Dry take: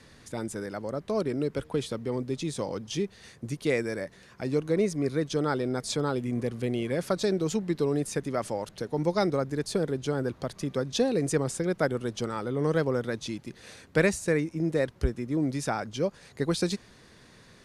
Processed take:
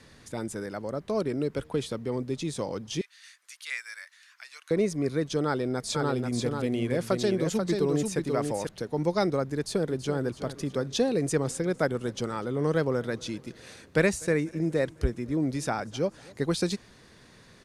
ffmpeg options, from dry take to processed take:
-filter_complex "[0:a]asettb=1/sr,asplit=3[a][b][c];[a]atrim=end=3.014[d];[b]atrim=start=3.01:end=4.71,asetpts=PTS-STARTPTS,afade=t=in:d=0.004:c=qsin,afade=t=out:st=1.696:d=0.004:c=qsin,highpass=f=1.4k:w=0.5412,highpass=f=1.4k:w=1.3066[e];[c]atrim=start=4.706[f];[d][e]acrossfade=d=0.004:c1=hsin:c2=qsin[g];[g][f]acrossfade=d=0.004:c1=qsin:c2=hsin,asettb=1/sr,asplit=3[h][i][j];[h]atrim=end=5.464[k];[i]atrim=start=5.46:end=8.67,asetpts=PTS-STARTPTS,afade=t=in:d=0.004:c=qsin,afade=t=out:st=3.206:d=0.004:c=qsin,aecho=1:1:487:0.596,atrim=end_sample=141561[l];[j]atrim=start=8.666[m];[k][l]acrossfade=d=0.004:c1=hsin:c2=qsin[n];[n][m]acrossfade=d=0.004:c1=qsin:c2=hsin,asplit=2[o][p];[p]afade=t=in:st=9.57:d=0.01,afade=t=out:st=10.21:d=0.01,aecho=0:1:330|660|990|1320|1650:0.237137|0.118569|0.0592843|0.0296422|0.0148211[q];[o][q]amix=inputs=2:normalize=0,asplit=3[r][s][t];[r]afade=t=out:st=11.41:d=0.02[u];[s]aecho=1:1:248|496|744|992:0.0631|0.036|0.0205|0.0117,afade=t=in:st=11.41:d=0.02,afade=t=out:st=16.45:d=0.02[v];[t]afade=t=in:st=16.45:d=0.02[w];[u][v][w]amix=inputs=3:normalize=0"

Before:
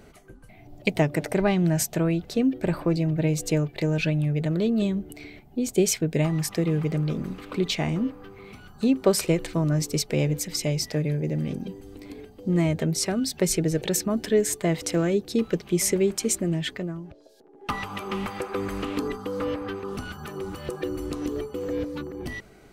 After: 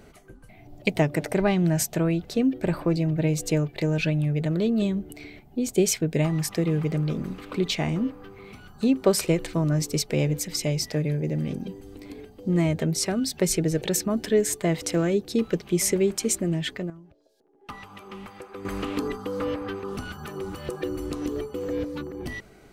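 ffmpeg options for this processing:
-filter_complex "[0:a]asplit=3[a][b][c];[a]atrim=end=16.902[d];[b]atrim=start=16.898:end=18.652,asetpts=PTS-STARTPTS,volume=-10.5dB[e];[c]atrim=start=18.648[f];[d][e]acrossfade=d=0.004:c1=hsin:c2=hsin[g];[g][f]acrossfade=d=0.004:c1=hsin:c2=hsin"

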